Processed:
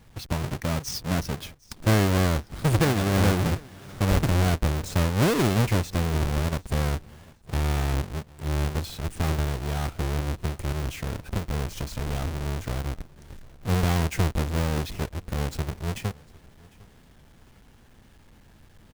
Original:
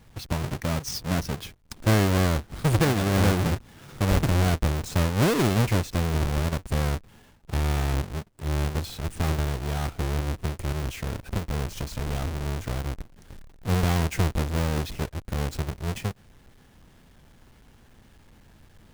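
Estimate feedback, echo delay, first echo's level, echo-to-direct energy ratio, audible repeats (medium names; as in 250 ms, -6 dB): 35%, 753 ms, -24.0 dB, -23.5 dB, 2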